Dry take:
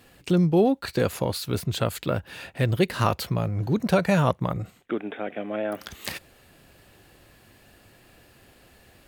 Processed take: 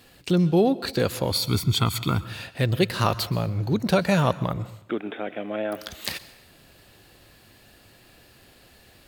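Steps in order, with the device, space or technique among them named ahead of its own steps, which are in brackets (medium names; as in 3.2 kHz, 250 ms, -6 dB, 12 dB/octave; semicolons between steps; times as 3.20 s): 1.31–2.24 s: comb 0.9 ms, depth 90%; presence and air boost (peaking EQ 4.2 kHz +5.5 dB 0.85 oct; treble shelf 11 kHz +3.5 dB); plate-style reverb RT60 0.72 s, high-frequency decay 0.9×, pre-delay 110 ms, DRR 16.5 dB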